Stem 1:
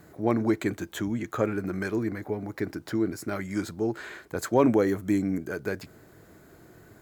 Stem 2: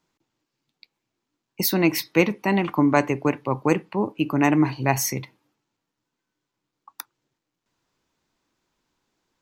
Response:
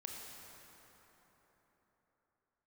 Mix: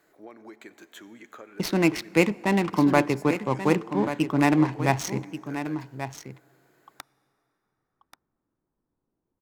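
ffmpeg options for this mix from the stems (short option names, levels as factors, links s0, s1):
-filter_complex "[0:a]highpass=360,equalizer=f=2700:w=0.79:g=4.5,acompressor=threshold=0.0251:ratio=6,volume=0.266,asplit=2[s0][s1];[s1]volume=0.398[s2];[1:a]adynamicsmooth=sensitivity=4.5:basefreq=630,volume=0.794,asplit=3[s3][s4][s5];[s4]volume=0.126[s6];[s5]volume=0.316[s7];[2:a]atrim=start_sample=2205[s8];[s2][s6]amix=inputs=2:normalize=0[s9];[s9][s8]afir=irnorm=-1:irlink=0[s10];[s7]aecho=0:1:1134:1[s11];[s0][s3][s10][s11]amix=inputs=4:normalize=0"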